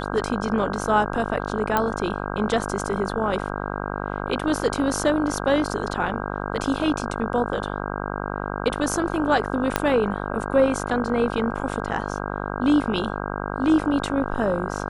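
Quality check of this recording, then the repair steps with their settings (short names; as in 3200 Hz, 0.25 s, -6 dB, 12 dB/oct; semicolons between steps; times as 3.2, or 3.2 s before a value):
buzz 50 Hz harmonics 32 -29 dBFS
1.77 pop -7 dBFS
9.76 pop -4 dBFS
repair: de-click; de-hum 50 Hz, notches 32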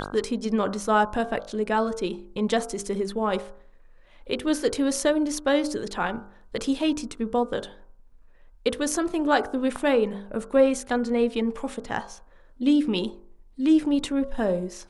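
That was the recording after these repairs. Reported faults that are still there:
9.76 pop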